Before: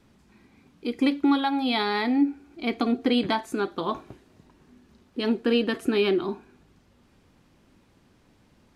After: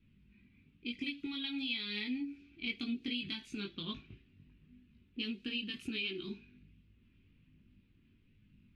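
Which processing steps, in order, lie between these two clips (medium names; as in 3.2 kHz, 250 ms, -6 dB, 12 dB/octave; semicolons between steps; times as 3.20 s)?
FFT filter 230 Hz 0 dB, 740 Hz -27 dB, 1.8 kHz -6 dB, 2.6 kHz +11 dB, 7.8 kHz -4 dB; level-controlled noise filter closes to 1.5 kHz, open at -24 dBFS; compression 6:1, threshold -29 dBFS, peak gain reduction 12 dB; chorus voices 4, 0.51 Hz, delay 20 ms, depth 1.5 ms; trim -2.5 dB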